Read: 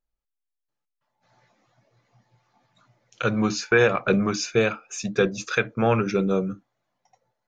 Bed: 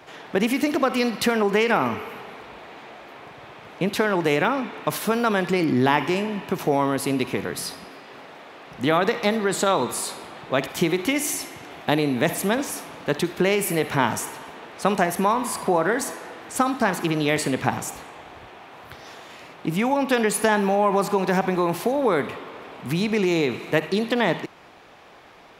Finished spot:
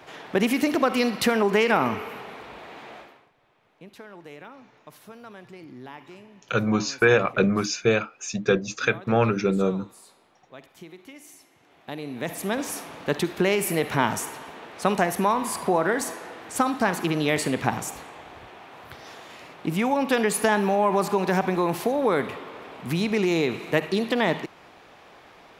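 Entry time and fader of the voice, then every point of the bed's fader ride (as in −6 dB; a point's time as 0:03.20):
3.30 s, 0.0 dB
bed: 0:02.99 −0.5 dB
0:03.32 −22.5 dB
0:11.45 −22.5 dB
0:12.70 −1.5 dB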